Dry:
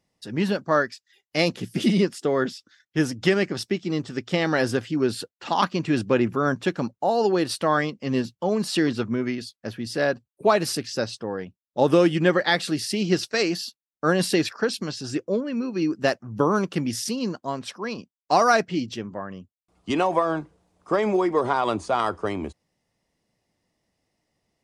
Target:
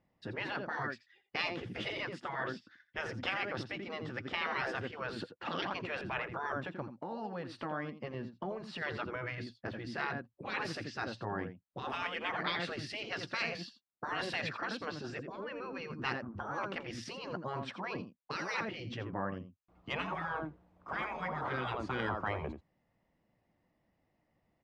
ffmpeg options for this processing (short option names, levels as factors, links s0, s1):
-filter_complex "[0:a]asplit=3[s0][s1][s2];[s0]afade=t=out:st=6.58:d=0.02[s3];[s1]acompressor=threshold=0.0282:ratio=10,afade=t=in:st=6.58:d=0.02,afade=t=out:st=8.81:d=0.02[s4];[s2]afade=t=in:st=8.81:d=0.02[s5];[s3][s4][s5]amix=inputs=3:normalize=0,lowpass=2000,equalizer=f=420:w=6.4:g=-6.5,aecho=1:1:84:0.211,afftfilt=real='re*lt(hypot(re,im),0.126)':imag='im*lt(hypot(re,im),0.126)':win_size=1024:overlap=0.75"